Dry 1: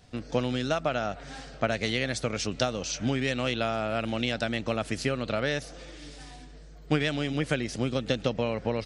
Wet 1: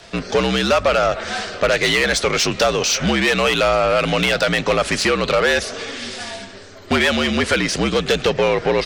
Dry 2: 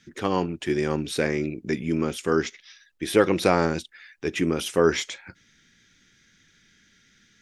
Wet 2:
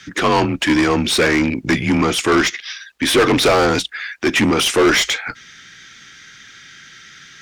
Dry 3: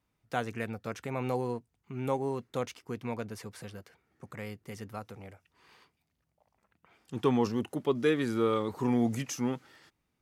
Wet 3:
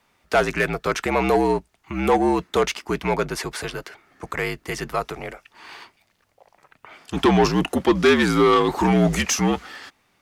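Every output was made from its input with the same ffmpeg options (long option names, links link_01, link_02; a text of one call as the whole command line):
ffmpeg -i in.wav -filter_complex "[0:a]asplit=2[link_01][link_02];[link_02]highpass=frequency=720:poles=1,volume=28dB,asoftclip=type=tanh:threshold=-4dB[link_03];[link_01][link_03]amix=inputs=2:normalize=0,lowpass=frequency=5100:poles=1,volume=-6dB,afreqshift=-58,volume=-1dB" out.wav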